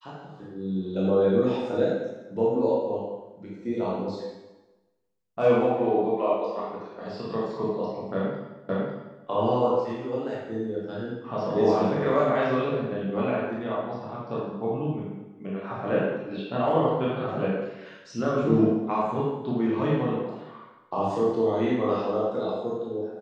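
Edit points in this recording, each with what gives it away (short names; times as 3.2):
8.69 repeat of the last 0.55 s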